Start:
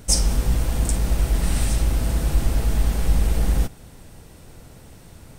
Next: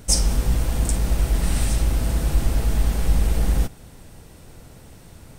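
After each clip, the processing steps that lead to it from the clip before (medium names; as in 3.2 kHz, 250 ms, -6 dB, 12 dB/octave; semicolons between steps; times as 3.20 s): no audible change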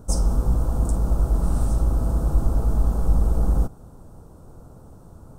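FFT filter 1.3 kHz 0 dB, 2 kHz -26 dB, 6.9 kHz -11 dB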